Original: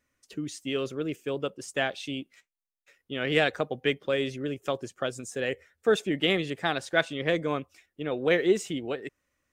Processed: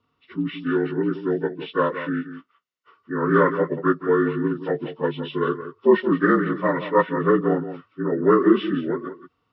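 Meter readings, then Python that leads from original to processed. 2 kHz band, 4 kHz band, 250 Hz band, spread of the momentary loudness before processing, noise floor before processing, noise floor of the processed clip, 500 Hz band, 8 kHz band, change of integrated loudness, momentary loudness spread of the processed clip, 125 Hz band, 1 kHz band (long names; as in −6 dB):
+2.0 dB, −7.5 dB, +10.5 dB, 12 LU, −85 dBFS, −72 dBFS, +7.0 dB, below −35 dB, +7.0 dB, 11 LU, +8.0 dB, +10.5 dB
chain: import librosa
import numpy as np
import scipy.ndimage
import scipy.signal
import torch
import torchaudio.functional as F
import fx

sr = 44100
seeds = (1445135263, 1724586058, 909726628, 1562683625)

y = fx.partial_stretch(x, sr, pct=75)
y = fx.bass_treble(y, sr, bass_db=4, treble_db=-12)
y = fx.notch_comb(y, sr, f0_hz=810.0)
y = y + 10.0 ** (-11.5 / 20.0) * np.pad(y, (int(174 * sr / 1000.0), 0))[:len(y)]
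y = y * librosa.db_to_amplitude(8.0)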